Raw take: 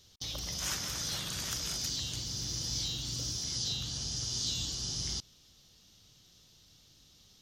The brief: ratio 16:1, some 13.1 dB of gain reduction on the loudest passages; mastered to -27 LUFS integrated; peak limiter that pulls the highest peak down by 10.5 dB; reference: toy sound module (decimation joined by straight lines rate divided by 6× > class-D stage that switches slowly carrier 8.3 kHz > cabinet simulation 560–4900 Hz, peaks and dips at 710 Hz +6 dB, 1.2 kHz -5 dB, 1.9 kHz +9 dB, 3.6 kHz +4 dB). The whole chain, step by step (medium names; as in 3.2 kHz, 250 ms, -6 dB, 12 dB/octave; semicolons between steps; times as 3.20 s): compression 16:1, threshold -44 dBFS; peak limiter -39 dBFS; decimation joined by straight lines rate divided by 6×; class-D stage that switches slowly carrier 8.3 kHz; cabinet simulation 560–4900 Hz, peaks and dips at 710 Hz +6 dB, 1.2 kHz -5 dB, 1.9 kHz +9 dB, 3.6 kHz +4 dB; trim +21.5 dB